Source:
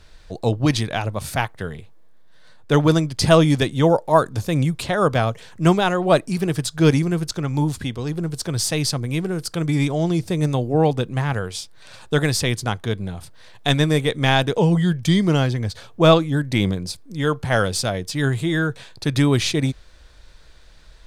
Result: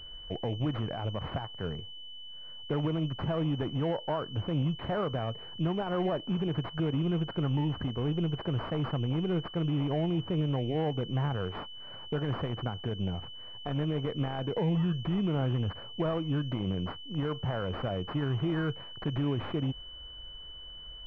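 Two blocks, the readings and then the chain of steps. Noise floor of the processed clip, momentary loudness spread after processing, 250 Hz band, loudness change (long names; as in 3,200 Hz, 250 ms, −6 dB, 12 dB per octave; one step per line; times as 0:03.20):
−45 dBFS, 11 LU, −11.0 dB, −12.0 dB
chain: downward compressor 5 to 1, threshold −19 dBFS, peak gain reduction 10.5 dB
brickwall limiter −19 dBFS, peak gain reduction 10.5 dB
switching amplifier with a slow clock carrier 3,000 Hz
level −3.5 dB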